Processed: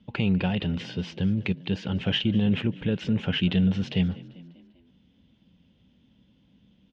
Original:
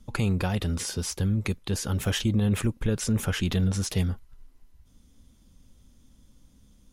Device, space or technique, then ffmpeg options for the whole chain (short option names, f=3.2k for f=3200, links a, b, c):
frequency-shifting delay pedal into a guitar cabinet: -filter_complex "[0:a]asplit=5[a][b][c][d][e];[b]adelay=197,afreqshift=40,volume=-20dB[f];[c]adelay=394,afreqshift=80,volume=-25.7dB[g];[d]adelay=591,afreqshift=120,volume=-31.4dB[h];[e]adelay=788,afreqshift=160,volume=-37dB[i];[a][f][g][h][i]amix=inputs=5:normalize=0,highpass=110,equalizer=f=180:t=q:w=4:g=7,equalizer=f=1.2k:t=q:w=4:g=-9,equalizer=f=2.9k:t=q:w=4:g=9,lowpass=f=3.6k:w=0.5412,lowpass=f=3.6k:w=1.3066"